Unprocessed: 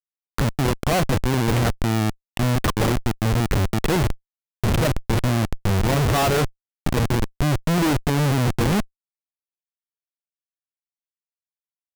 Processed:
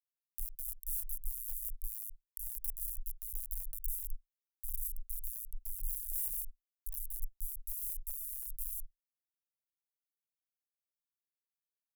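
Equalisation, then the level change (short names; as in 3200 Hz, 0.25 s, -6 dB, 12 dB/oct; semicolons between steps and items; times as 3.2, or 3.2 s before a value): HPF 84 Hz 6 dB/oct; inverse Chebyshev band-stop 130–2400 Hz, stop band 80 dB; high shelf 2200 Hz -6.5 dB; +6.5 dB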